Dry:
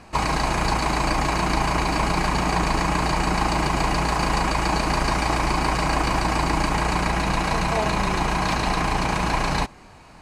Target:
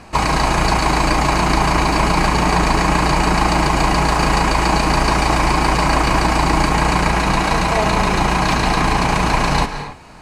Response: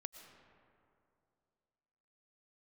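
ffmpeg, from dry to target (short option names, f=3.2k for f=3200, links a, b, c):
-filter_complex "[1:a]atrim=start_sample=2205,afade=t=out:st=0.25:d=0.01,atrim=end_sample=11466,asetrate=29988,aresample=44100[a];[0:a][a]afir=irnorm=-1:irlink=0,volume=9dB"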